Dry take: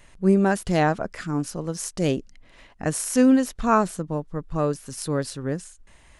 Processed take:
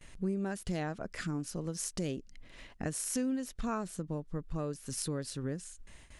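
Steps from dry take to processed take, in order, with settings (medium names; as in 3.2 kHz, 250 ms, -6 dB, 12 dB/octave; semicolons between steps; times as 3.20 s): gate with hold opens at -42 dBFS; peaking EQ 890 Hz -5.5 dB 1.6 oct; compression 4:1, threshold -34 dBFS, peak gain reduction 16.5 dB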